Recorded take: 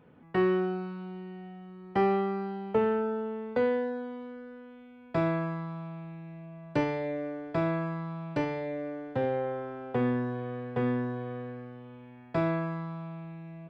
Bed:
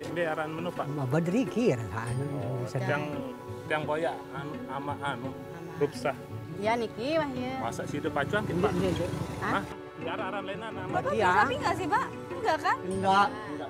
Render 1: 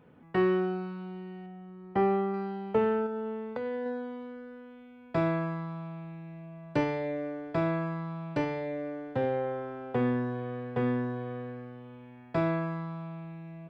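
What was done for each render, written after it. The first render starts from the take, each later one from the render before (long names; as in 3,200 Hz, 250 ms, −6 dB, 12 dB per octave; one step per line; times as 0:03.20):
0:01.46–0:02.34: low-pass filter 1,700 Hz 6 dB per octave
0:03.06–0:03.86: downward compressor 12 to 1, threshold −30 dBFS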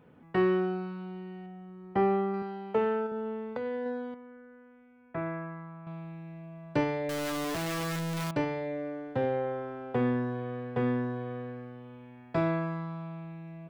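0:02.42–0:03.12: high-pass filter 260 Hz 6 dB per octave
0:04.14–0:05.87: transistor ladder low-pass 2,400 Hz, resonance 35%
0:07.09–0:08.31: sign of each sample alone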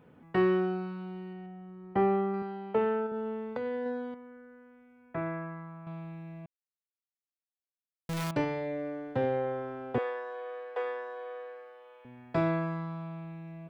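0:01.33–0:03.14: high-frequency loss of the air 120 metres
0:06.46–0:08.09: silence
0:09.98–0:12.05: elliptic high-pass filter 470 Hz, stop band 60 dB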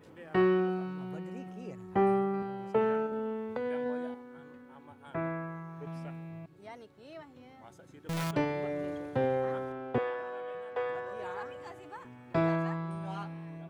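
mix in bed −20 dB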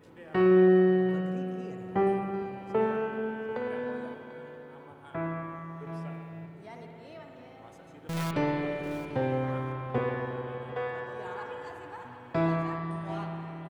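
single-tap delay 742 ms −14.5 dB
spring reverb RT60 3.5 s, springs 54 ms, chirp 30 ms, DRR 1.5 dB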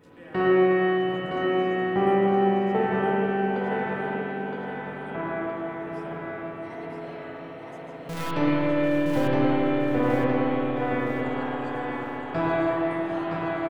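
on a send: repeating echo 966 ms, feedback 41%, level −4 dB
on the sum: spring reverb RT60 2.9 s, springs 47/51/58 ms, chirp 65 ms, DRR −5.5 dB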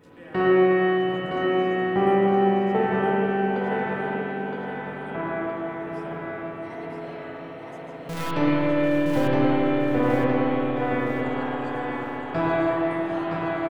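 level +1.5 dB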